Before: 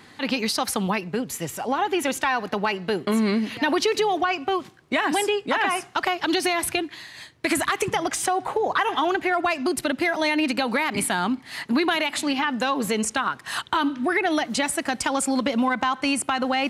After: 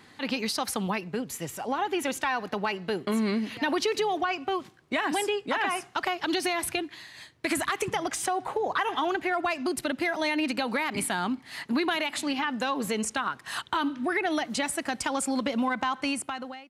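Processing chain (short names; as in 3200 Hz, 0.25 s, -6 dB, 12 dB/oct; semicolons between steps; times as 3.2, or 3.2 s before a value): ending faded out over 0.67 s; gain -5 dB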